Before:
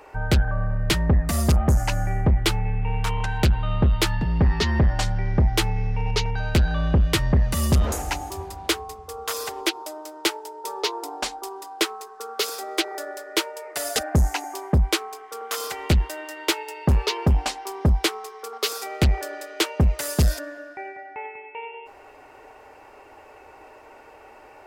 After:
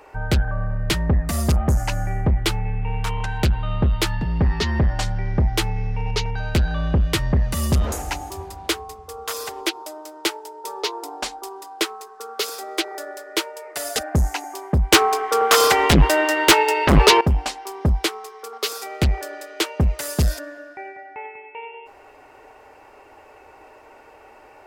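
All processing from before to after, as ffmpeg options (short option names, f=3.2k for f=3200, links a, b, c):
-filter_complex "[0:a]asettb=1/sr,asplit=3[a][b][c];[a]atrim=end=14.924[d];[b]atrim=start=14.92:end=17.21,asetpts=PTS-STARTPTS,afade=t=in:d=0.004:c=qsin,afade=t=out:st=2.286:d=0.004:c=qsin,highshelf=f=6k:g=-8,acontrast=64,aeval=exprs='0.473*sin(PI/2*2.24*val(0)/0.473)':c=same[e];[c]atrim=start=17.206[f];[d][e]acrossfade=d=0.004:c1=hsin:c2=qsin[g];[g][f]acrossfade=d=0.004:c1=qsin:c2=hsin"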